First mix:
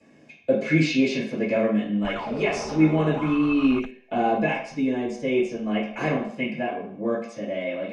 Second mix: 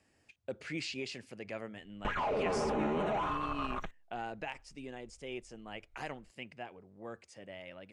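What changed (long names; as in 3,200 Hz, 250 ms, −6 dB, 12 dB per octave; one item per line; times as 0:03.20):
speech −3.5 dB
reverb: off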